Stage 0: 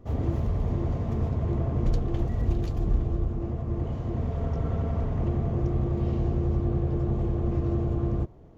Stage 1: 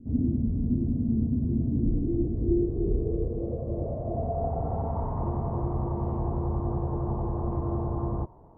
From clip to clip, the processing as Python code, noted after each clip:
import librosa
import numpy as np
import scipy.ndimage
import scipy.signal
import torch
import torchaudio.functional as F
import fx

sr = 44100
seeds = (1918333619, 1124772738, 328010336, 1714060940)

y = fx.filter_sweep_lowpass(x, sr, from_hz=250.0, to_hz=950.0, start_s=1.65, end_s=5.13, q=6.6)
y = y * 10.0 ** (-3.5 / 20.0)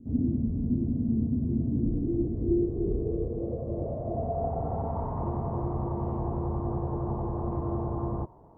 y = fx.low_shelf(x, sr, hz=67.0, db=-7.0)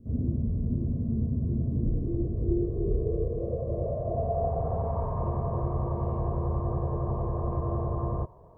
y = x + 0.61 * np.pad(x, (int(1.8 * sr / 1000.0), 0))[:len(x)]